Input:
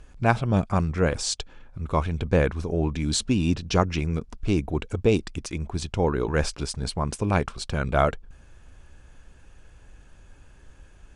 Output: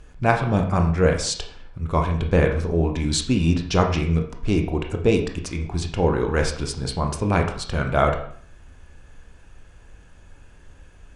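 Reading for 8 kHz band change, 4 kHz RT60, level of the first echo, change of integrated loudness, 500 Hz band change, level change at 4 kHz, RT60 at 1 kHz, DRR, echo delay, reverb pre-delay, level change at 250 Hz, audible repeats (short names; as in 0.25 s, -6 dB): +1.5 dB, 0.50 s, none, +3.0 dB, +3.5 dB, +2.5 dB, 0.55 s, 2.5 dB, none, 18 ms, +3.0 dB, none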